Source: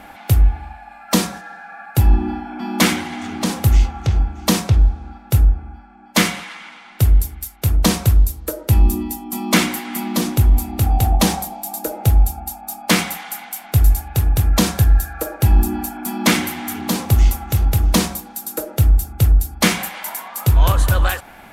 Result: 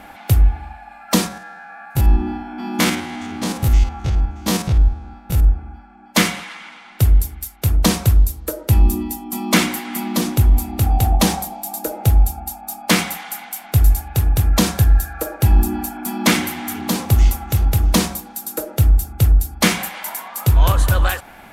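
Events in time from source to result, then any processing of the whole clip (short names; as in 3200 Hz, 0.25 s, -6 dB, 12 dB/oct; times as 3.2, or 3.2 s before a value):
1.28–5.45 stepped spectrum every 50 ms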